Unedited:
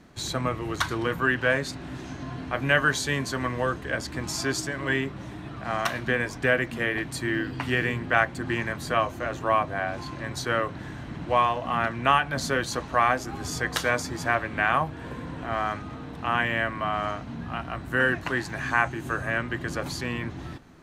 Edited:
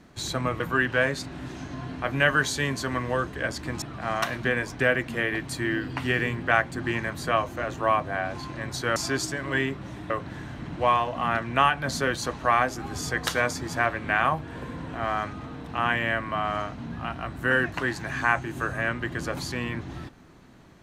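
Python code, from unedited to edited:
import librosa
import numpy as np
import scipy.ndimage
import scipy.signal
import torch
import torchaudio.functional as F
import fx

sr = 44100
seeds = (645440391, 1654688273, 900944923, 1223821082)

y = fx.edit(x, sr, fx.cut(start_s=0.6, length_s=0.49),
    fx.move(start_s=4.31, length_s=1.14, to_s=10.59), tone=tone)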